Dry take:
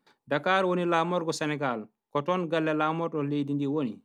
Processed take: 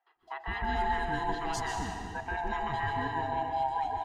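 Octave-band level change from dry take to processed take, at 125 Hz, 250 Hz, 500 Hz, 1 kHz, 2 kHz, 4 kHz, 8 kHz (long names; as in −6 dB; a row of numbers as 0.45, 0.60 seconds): −6.0, −12.5, −10.5, +0.5, −2.5, −5.0, −1.5 decibels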